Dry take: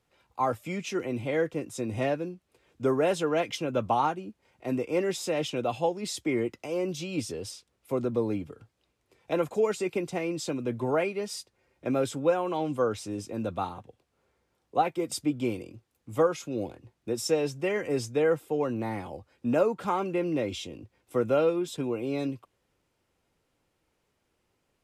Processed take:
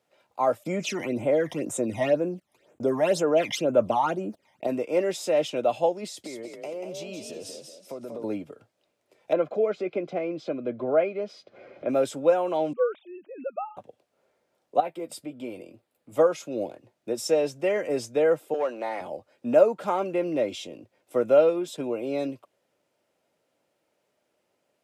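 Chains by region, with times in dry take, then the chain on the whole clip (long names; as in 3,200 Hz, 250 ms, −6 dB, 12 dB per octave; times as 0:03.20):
0:00.63–0:04.67: noise gate −53 dBFS, range −36 dB + all-pass phaser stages 12, 2 Hz, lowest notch 430–4,900 Hz + envelope flattener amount 50%
0:06.05–0:08.24: downward compressor 5 to 1, threshold −36 dBFS + echo with shifted repeats 188 ms, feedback 36%, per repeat +43 Hz, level −6 dB
0:09.33–0:11.89: notch comb filter 910 Hz + upward compression, threshold −30 dBFS + high-frequency loss of the air 270 metres
0:12.73–0:13.77: three sine waves on the formant tracks + low-shelf EQ 430 Hz −7 dB
0:14.80–0:16.12: parametric band 6,100 Hz −8 dB 0.51 octaves + downward compressor 1.5 to 1, threshold −44 dBFS + double-tracking delay 12 ms −10 dB
0:18.54–0:19.01: band-pass filter 550–7,200 Hz + leveller curve on the samples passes 1
whole clip: high-pass filter 190 Hz 12 dB per octave; parametric band 610 Hz +10.5 dB 0.39 octaves; notch filter 1,100 Hz, Q 20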